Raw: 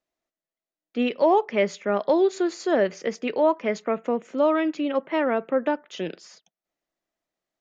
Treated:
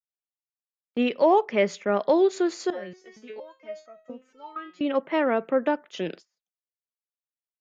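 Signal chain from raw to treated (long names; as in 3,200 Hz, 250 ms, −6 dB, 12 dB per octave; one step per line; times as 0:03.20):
noise gate −41 dBFS, range −32 dB
0:02.70–0:04.81: step-sequenced resonator 4.3 Hz 180–640 Hz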